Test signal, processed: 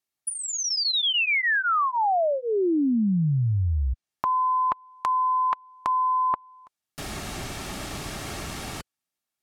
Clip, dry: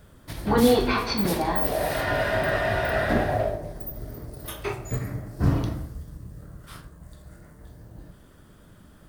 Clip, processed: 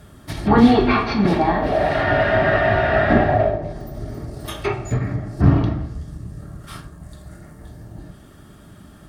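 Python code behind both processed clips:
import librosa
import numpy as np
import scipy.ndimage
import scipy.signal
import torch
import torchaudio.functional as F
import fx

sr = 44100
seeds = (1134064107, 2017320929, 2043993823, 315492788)

y = fx.env_lowpass_down(x, sr, base_hz=2900.0, full_db=-24.5)
y = fx.notch_comb(y, sr, f0_hz=500.0)
y = F.gain(torch.from_numpy(y), 8.5).numpy()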